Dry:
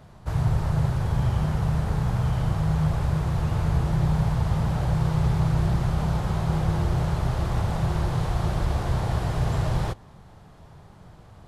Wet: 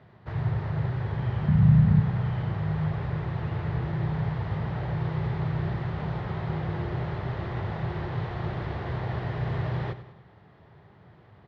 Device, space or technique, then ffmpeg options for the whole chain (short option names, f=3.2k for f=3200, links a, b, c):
guitar cabinet: -filter_complex "[0:a]asettb=1/sr,asplit=3[a][b][c];[a]atrim=end=1.484[d];[b]atrim=start=1.48:end=2,asetpts=PTS-STARTPTS,afade=t=in:d=0.004:c=qsin,afade=t=out:st=0.516:d=0.004:c=qsin,lowshelf=f=260:t=q:w=3:g=8.5[e];[c]atrim=start=1.996[f];[d][e]acrossfade=d=0.004:c1=hsin:c2=qsin[g];[g][f]acrossfade=d=0.004:c1=qsin:c2=hsin,highpass=93,equalizer=f=110:t=q:w=4:g=4,equalizer=f=390:t=q:w=4:g=6,equalizer=f=1.9k:t=q:w=4:g=8,lowpass=f=3.9k:w=0.5412,lowpass=f=3.9k:w=1.3066,aecho=1:1:97|194|291|388|485:0.2|0.0958|0.046|0.0221|0.0106,volume=-5.5dB"